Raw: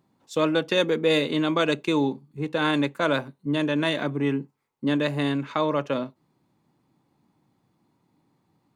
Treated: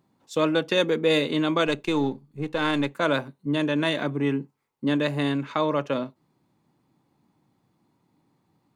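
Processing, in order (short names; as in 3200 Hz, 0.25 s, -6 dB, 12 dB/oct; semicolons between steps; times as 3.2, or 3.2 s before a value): 1.67–2.92 half-wave gain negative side -3 dB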